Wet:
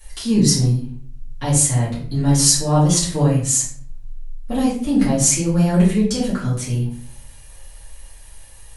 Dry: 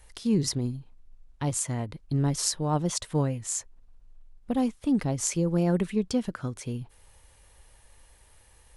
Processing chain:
high-shelf EQ 4,200 Hz +10.5 dB
rectangular room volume 58 cubic metres, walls mixed, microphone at 2.3 metres
level −3 dB

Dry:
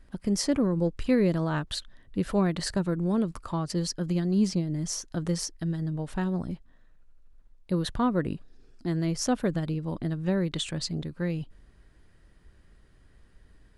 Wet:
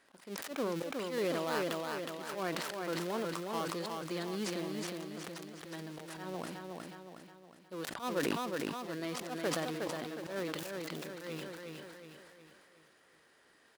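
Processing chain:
gap after every zero crossing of 0.17 ms
high-pass filter 510 Hz 12 dB per octave
in parallel at −2 dB: downward compressor, threshold −46 dBFS, peak gain reduction 19 dB
on the sum: volume swells 121 ms
on a send: repeating echo 364 ms, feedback 47%, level −4 dB
on the sum: level that may fall only so fast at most 26 dB per second
level −3 dB

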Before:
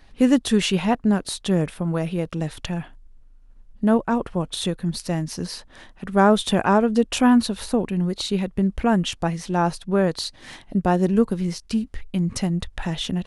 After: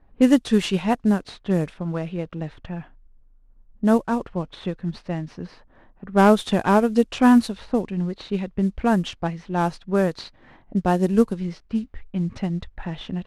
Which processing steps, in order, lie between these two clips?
variable-slope delta modulation 64 kbit/s
low-pass that shuts in the quiet parts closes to 990 Hz, open at −14.5 dBFS
expander for the loud parts 1.5 to 1, over −26 dBFS
level +2 dB

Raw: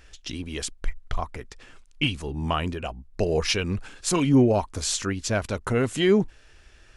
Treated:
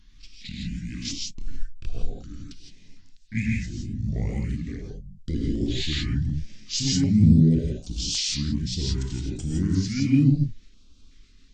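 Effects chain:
pitch shifter swept by a sawtooth +5 semitones, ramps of 190 ms
parametric band 4,500 Hz +8 dB 2.9 octaves
reverb whose tail is shaped and stops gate 120 ms rising, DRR −1.5 dB
tape wow and flutter 26 cents
drawn EQ curve 370 Hz 0 dB, 1,500 Hz −27 dB, 11,000 Hz −3 dB
change of speed 0.604×
notch on a step sequencer 2.7 Hz 520–1,900 Hz

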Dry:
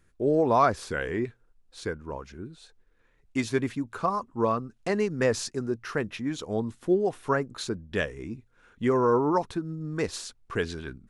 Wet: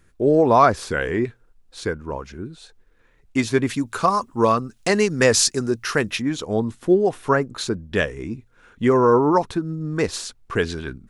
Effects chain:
0:03.69–0:06.22: high-shelf EQ 2,700 Hz +11.5 dB
level +7 dB

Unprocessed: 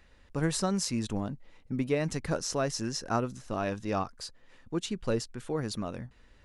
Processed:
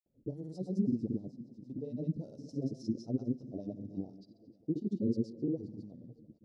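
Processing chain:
elliptic band-stop filter 510–4,800 Hz, stop band 50 dB
low-pass that shuts in the quiet parts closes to 1,300 Hz, open at −31 dBFS
octave-band graphic EQ 125/250/500/2,000/8,000 Hz +10/+5/−9/+7/−8 dB
in parallel at +1 dB: downward compressor, threshold −38 dBFS, peak gain reduction 17 dB
on the sum: echo machine with several playback heads 178 ms, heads first and third, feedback 47%, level −21 dB
auto-filter band-pass sine 5.2 Hz 270–1,500 Hz
tape delay 102 ms, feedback 48%, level −17 dB, low-pass 4,800 Hz
granular cloud, pitch spread up and down by 0 semitones
level +2 dB

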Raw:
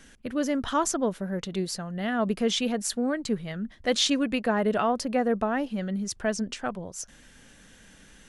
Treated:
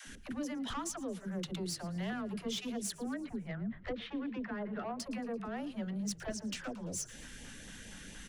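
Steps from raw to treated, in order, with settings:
0:02.92–0:04.99: low-pass filter 2,200 Hz 24 dB per octave
downward compressor 8 to 1, threshold −37 dBFS, peak gain reduction 17 dB
auto-filter notch saw up 4.3 Hz 370–1,600 Hz
soft clipping −37 dBFS, distortion −15 dB
all-pass dispersion lows, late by 70 ms, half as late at 370 Hz
echo with shifted repeats 113 ms, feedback 60%, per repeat −34 Hz, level −20 dB
level +4.5 dB

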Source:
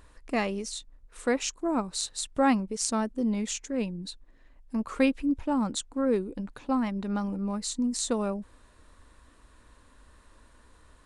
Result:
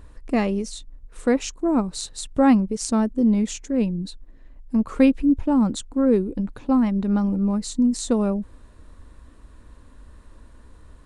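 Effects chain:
low-shelf EQ 490 Hz +11.5 dB

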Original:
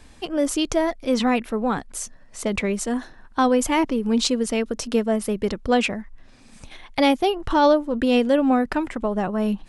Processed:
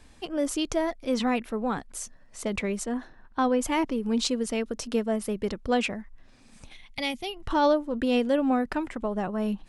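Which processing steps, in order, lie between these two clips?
0:02.83–0:03.62: high-shelf EQ 4,300 Hz → 6,400 Hz −12 dB
0:06.73–0:07.47: gain on a spectral selection 240–1,900 Hz −10 dB
level −5.5 dB

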